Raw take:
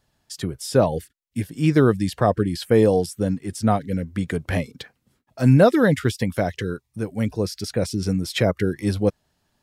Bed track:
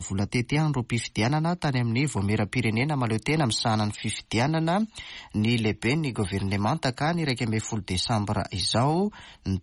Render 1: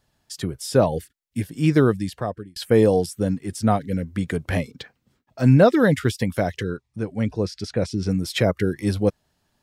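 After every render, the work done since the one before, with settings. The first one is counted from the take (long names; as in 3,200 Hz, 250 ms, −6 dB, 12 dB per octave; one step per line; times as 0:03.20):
0:01.76–0:02.56: fade out linear
0:04.70–0:05.80: parametric band 11,000 Hz −9.5 dB 0.69 octaves
0:06.63–0:08.11: high-frequency loss of the air 72 metres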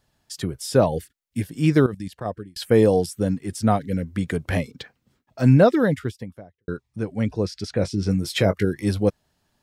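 0:01.86–0:02.26: output level in coarse steps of 15 dB
0:05.45–0:06.68: fade out and dull
0:07.71–0:08.65: double-tracking delay 20 ms −11 dB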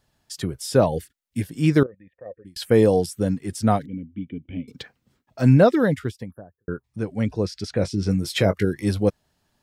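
0:01.83–0:02.45: formant resonators in series e
0:03.86–0:04.68: formant resonators in series i
0:06.31–0:06.84: linear-phase brick-wall band-stop 1,800–9,900 Hz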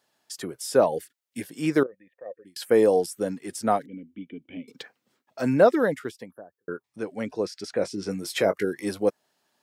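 high-pass filter 340 Hz 12 dB per octave
dynamic equaliser 3,600 Hz, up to −6 dB, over −45 dBFS, Q 1.1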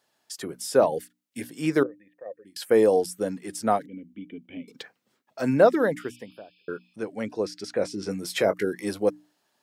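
0:06.01–0:06.93: healed spectral selection 2,300–5,200 Hz both
mains-hum notches 60/120/180/240/300 Hz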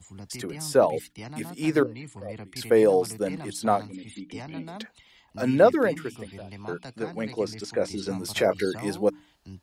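mix in bed track −16 dB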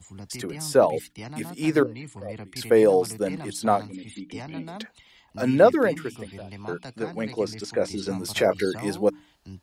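level +1.5 dB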